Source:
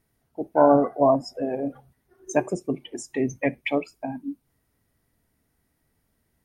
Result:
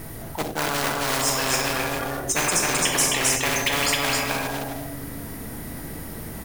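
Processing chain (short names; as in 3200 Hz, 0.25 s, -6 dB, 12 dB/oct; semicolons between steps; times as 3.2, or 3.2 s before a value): high shelf 7500 Hz +11 dB; reverb RT60 0.80 s, pre-delay 6 ms, DRR 4 dB; in parallel at -6.5 dB: short-mantissa float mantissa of 2-bit; on the sum: high shelf 2900 Hz -8.5 dB; reverse; compressor 10:1, threshold -22 dBFS, peak gain reduction 15.5 dB; reverse; echo 0.264 s -4.5 dB; spectral compressor 10:1; gain +6.5 dB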